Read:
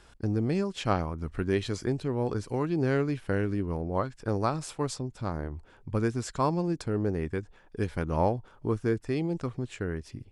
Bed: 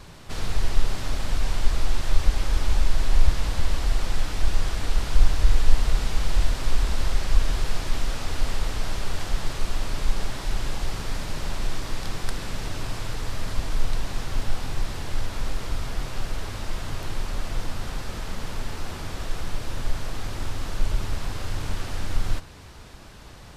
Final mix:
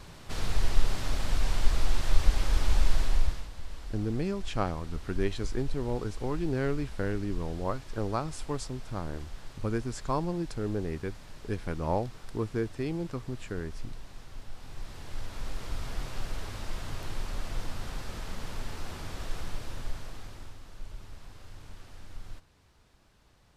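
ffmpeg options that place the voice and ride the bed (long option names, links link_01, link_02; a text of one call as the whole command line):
ffmpeg -i stem1.wav -i stem2.wav -filter_complex "[0:a]adelay=3700,volume=-3.5dB[link_01];[1:a]volume=8.5dB,afade=type=out:start_time=2.93:duration=0.55:silence=0.188365,afade=type=in:start_time=14.53:duration=1.41:silence=0.266073,afade=type=out:start_time=19.38:duration=1.23:silence=0.237137[link_02];[link_01][link_02]amix=inputs=2:normalize=0" out.wav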